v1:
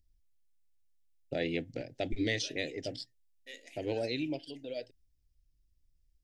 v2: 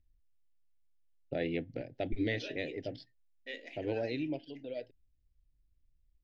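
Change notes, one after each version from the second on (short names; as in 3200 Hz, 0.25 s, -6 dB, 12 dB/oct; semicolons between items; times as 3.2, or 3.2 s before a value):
second voice +8.5 dB; master: add air absorption 280 m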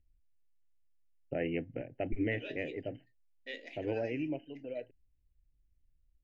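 first voice: add brick-wall FIR low-pass 3100 Hz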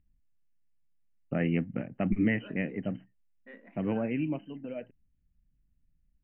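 second voice: add ladder low-pass 1700 Hz, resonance 30%; master: remove fixed phaser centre 480 Hz, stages 4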